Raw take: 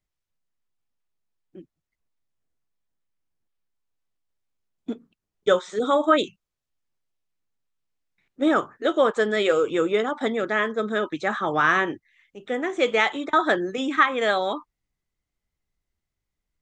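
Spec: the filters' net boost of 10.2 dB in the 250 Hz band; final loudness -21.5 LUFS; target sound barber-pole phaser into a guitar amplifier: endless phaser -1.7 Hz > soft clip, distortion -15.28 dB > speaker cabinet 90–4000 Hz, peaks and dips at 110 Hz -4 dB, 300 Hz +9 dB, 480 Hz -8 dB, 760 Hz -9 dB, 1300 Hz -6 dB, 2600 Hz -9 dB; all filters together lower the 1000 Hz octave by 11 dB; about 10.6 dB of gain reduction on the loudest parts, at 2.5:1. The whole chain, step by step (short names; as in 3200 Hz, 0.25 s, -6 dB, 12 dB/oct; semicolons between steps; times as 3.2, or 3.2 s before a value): bell 250 Hz +7 dB; bell 1000 Hz -7.5 dB; compressor 2.5:1, threshold -30 dBFS; endless phaser -1.7 Hz; soft clip -27.5 dBFS; speaker cabinet 90–4000 Hz, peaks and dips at 110 Hz -4 dB, 300 Hz +9 dB, 480 Hz -8 dB, 760 Hz -9 dB, 1300 Hz -6 dB, 2600 Hz -9 dB; gain +13 dB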